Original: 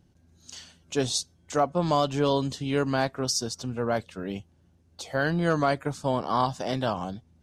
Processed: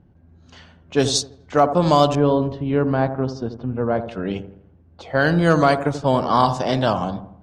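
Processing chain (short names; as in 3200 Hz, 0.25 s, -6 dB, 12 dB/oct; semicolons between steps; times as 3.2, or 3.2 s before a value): low-pass opened by the level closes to 1500 Hz, open at -20.5 dBFS; 2.15–4.08 tape spacing loss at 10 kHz 45 dB; dark delay 83 ms, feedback 43%, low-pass 1100 Hz, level -9.5 dB; gain +8 dB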